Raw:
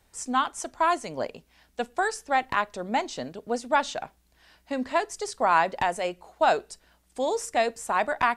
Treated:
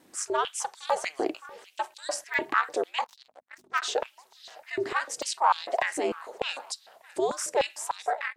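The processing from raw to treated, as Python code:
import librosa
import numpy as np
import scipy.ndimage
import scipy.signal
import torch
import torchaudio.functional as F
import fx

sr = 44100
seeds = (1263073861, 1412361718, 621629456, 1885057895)

p1 = fx.fade_out_tail(x, sr, length_s=0.59)
p2 = fx.over_compress(p1, sr, threshold_db=-35.0, ratio=-1.0)
p3 = p1 + F.gain(torch.from_numpy(p2), -1.0).numpy()
p4 = 10.0 ** (-11.0 / 20.0) * np.tanh(p3 / 10.0 ** (-11.0 / 20.0))
p5 = p4 + fx.echo_feedback(p4, sr, ms=612, feedback_pct=35, wet_db=-22, dry=0)
p6 = p5 * np.sin(2.0 * np.pi * 140.0 * np.arange(len(p5)) / sr)
p7 = fx.power_curve(p6, sr, exponent=3.0, at=(3.04, 3.82))
p8 = fx.add_hum(p7, sr, base_hz=50, snr_db=25)
p9 = fx.buffer_crackle(p8, sr, first_s=0.9, period_s=0.72, block=128, kind='zero')
p10 = fx.filter_held_highpass(p9, sr, hz=6.7, low_hz=310.0, high_hz=4000.0)
y = F.gain(torch.from_numpy(p10), -3.0).numpy()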